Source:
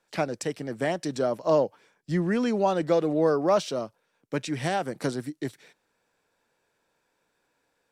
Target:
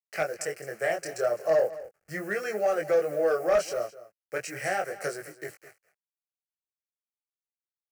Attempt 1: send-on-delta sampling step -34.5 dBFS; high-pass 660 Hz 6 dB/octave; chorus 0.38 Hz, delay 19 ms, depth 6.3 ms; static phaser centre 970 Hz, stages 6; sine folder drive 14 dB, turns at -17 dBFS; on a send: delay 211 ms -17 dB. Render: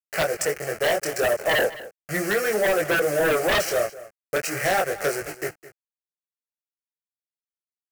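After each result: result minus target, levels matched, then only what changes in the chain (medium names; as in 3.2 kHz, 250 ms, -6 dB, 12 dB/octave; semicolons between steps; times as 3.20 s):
sine folder: distortion +20 dB; send-on-delta sampling: distortion +12 dB
change: sine folder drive 4 dB, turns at -17 dBFS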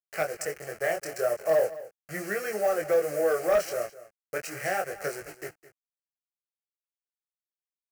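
send-on-delta sampling: distortion +12 dB
change: send-on-delta sampling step -46.5 dBFS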